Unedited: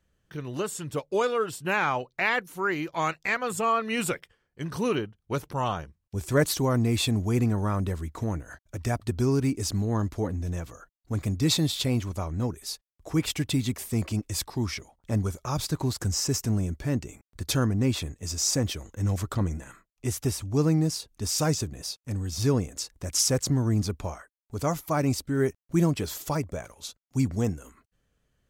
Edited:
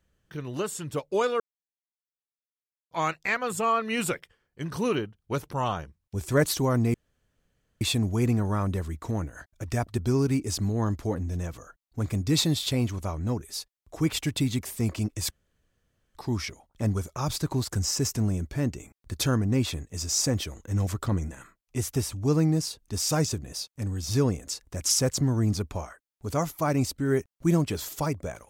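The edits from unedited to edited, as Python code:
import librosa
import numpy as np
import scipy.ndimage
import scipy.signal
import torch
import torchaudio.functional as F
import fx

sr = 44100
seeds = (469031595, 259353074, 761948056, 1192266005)

y = fx.edit(x, sr, fx.silence(start_s=1.4, length_s=1.51),
    fx.insert_room_tone(at_s=6.94, length_s=0.87),
    fx.insert_room_tone(at_s=14.44, length_s=0.84), tone=tone)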